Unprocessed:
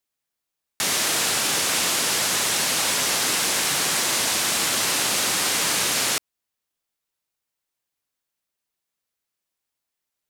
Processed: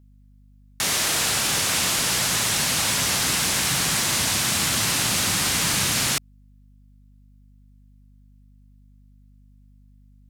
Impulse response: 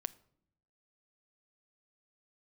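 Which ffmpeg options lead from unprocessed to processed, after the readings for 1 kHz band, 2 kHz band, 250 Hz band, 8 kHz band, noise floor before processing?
−1.0 dB, −0.5 dB, +3.0 dB, 0.0 dB, −84 dBFS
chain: -af "asubboost=boost=7:cutoff=160,aeval=exprs='val(0)+0.00282*(sin(2*PI*50*n/s)+sin(2*PI*2*50*n/s)/2+sin(2*PI*3*50*n/s)/3+sin(2*PI*4*50*n/s)/4+sin(2*PI*5*50*n/s)/5)':channel_layout=same"

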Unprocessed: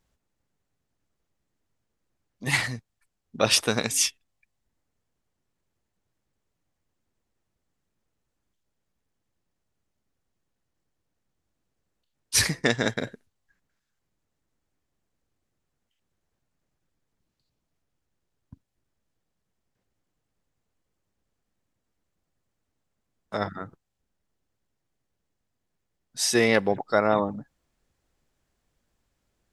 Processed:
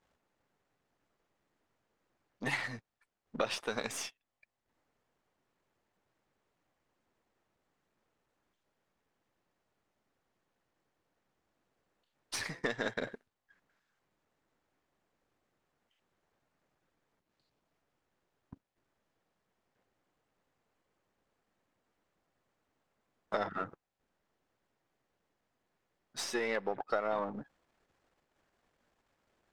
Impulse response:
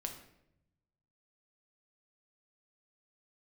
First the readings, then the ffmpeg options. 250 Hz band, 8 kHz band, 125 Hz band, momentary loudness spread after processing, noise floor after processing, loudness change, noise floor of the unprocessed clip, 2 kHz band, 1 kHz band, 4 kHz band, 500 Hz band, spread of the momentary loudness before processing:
−13.5 dB, −18.0 dB, −16.0 dB, 12 LU, −84 dBFS, −12.5 dB, −80 dBFS, −10.5 dB, −8.5 dB, −15.5 dB, −10.5 dB, 18 LU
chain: -filter_complex "[0:a]aeval=exprs='if(lt(val(0),0),0.447*val(0),val(0))':channel_layout=same,acompressor=threshold=-34dB:ratio=16,asplit=2[link_01][link_02];[link_02]highpass=frequency=720:poles=1,volume=19dB,asoftclip=type=tanh:threshold=-3dB[link_03];[link_01][link_03]amix=inputs=2:normalize=0,lowpass=frequency=1300:poles=1,volume=-6dB,volume=-3dB"

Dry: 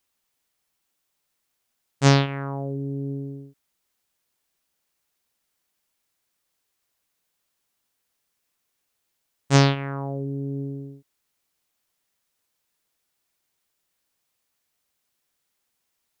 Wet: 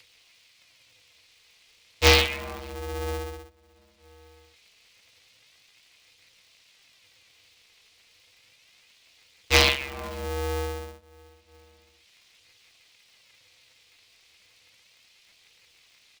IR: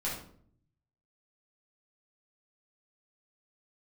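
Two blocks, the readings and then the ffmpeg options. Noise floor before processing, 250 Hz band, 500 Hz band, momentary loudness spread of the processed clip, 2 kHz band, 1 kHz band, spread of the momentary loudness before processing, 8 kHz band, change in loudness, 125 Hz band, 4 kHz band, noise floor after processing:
−77 dBFS, −10.5 dB, +0.5 dB, 18 LU, +6.5 dB, −1.0 dB, 18 LU, +3.0 dB, 0.0 dB, −9.0 dB, +7.5 dB, −61 dBFS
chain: -filter_complex "[0:a]acrossover=split=280|1900[link_01][link_02][link_03];[link_01]acompressor=threshold=-35dB:ratio=6[link_04];[link_04][link_02][link_03]amix=inputs=3:normalize=0,asplit=2[link_05][link_06];[link_06]adelay=514,lowpass=frequency=1000:poles=1,volume=-24dB,asplit=2[link_07][link_08];[link_08]adelay=514,lowpass=frequency=1000:poles=1,volume=0.33[link_09];[link_05][link_07][link_09]amix=inputs=3:normalize=0,asplit=2[link_10][link_11];[link_11]acrusher=bits=3:mix=0:aa=0.5,volume=-9.5dB[link_12];[link_10][link_12]amix=inputs=2:normalize=0,acompressor=mode=upward:threshold=-43dB:ratio=2.5,asplit=3[link_13][link_14][link_15];[link_13]bandpass=frequency=300:width_type=q:width=8,volume=0dB[link_16];[link_14]bandpass=frequency=870:width_type=q:width=8,volume=-6dB[link_17];[link_15]bandpass=frequency=2240:width_type=q:width=8,volume=-9dB[link_18];[link_16][link_17][link_18]amix=inputs=3:normalize=0,aexciter=amount=2.4:drive=10:freq=2100,lowshelf=frequency=320:gain=7.5,flanger=delay=0.4:depth=4.3:regen=21:speed=0.32:shape=triangular,equalizer=frequency=4200:width=1:gain=11,aeval=exprs='val(0)*sgn(sin(2*PI*200*n/s))':channel_layout=same,volume=7.5dB"

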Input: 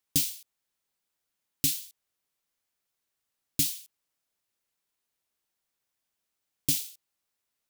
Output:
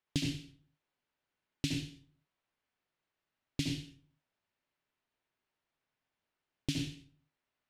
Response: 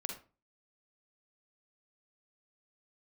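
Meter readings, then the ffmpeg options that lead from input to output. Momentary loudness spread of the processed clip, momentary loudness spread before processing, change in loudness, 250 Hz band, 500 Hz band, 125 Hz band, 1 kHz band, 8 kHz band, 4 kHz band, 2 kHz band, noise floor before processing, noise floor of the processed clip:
16 LU, 15 LU, −10.0 dB, +3.5 dB, +2.5 dB, +3.0 dB, can't be measured, −16.5 dB, −5.0 dB, +0.5 dB, −84 dBFS, below −85 dBFS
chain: -filter_complex "[0:a]lowpass=2900[link_01];[1:a]atrim=start_sample=2205,asetrate=28665,aresample=44100[link_02];[link_01][link_02]afir=irnorm=-1:irlink=0"

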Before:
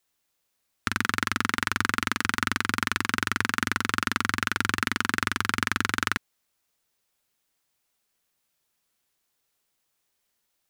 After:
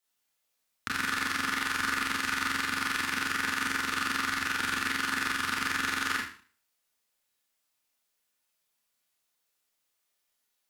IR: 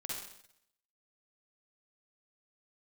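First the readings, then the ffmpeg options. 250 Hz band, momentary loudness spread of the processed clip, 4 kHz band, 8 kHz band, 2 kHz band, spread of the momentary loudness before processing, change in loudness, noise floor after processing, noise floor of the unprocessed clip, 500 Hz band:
−6.0 dB, 2 LU, −2.0 dB, −2.5 dB, −2.5 dB, 1 LU, −3.0 dB, −79 dBFS, −77 dBFS, −5.5 dB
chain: -filter_complex "[0:a]lowshelf=frequency=460:gain=-6[link_01];[1:a]atrim=start_sample=2205,asetrate=74970,aresample=44100[link_02];[link_01][link_02]afir=irnorm=-1:irlink=0,volume=2.5dB"

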